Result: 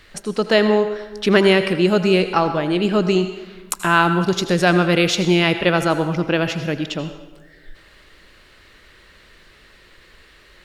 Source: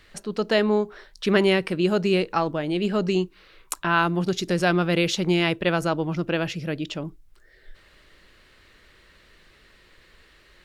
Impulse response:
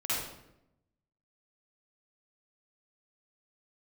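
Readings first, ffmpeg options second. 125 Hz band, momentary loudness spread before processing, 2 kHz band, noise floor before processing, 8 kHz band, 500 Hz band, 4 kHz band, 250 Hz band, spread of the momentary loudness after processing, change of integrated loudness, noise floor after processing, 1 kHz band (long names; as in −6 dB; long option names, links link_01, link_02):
+5.5 dB, 10 LU, +6.5 dB, −56 dBFS, +6.0 dB, +6.0 dB, +6.0 dB, +5.5 dB, 9 LU, +6.0 dB, −50 dBFS, +6.5 dB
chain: -filter_complex "[0:a]asplit=2[link_01][link_02];[link_02]highpass=frequency=470:poles=1[link_03];[1:a]atrim=start_sample=2205,asetrate=27783,aresample=44100[link_04];[link_03][link_04]afir=irnorm=-1:irlink=0,volume=-18dB[link_05];[link_01][link_05]amix=inputs=2:normalize=0,volume=5dB"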